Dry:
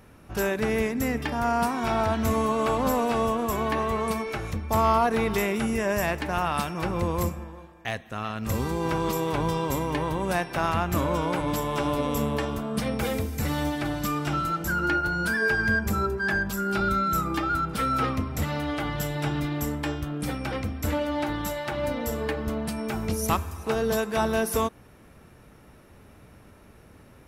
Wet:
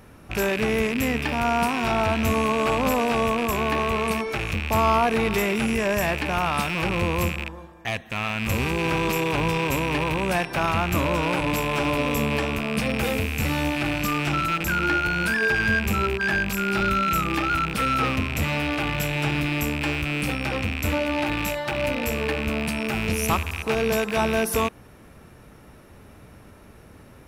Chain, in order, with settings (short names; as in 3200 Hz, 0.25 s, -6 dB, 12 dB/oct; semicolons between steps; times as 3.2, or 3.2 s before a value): rattling part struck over -36 dBFS, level -19 dBFS; in parallel at -5 dB: soft clip -28 dBFS, distortion -9 dB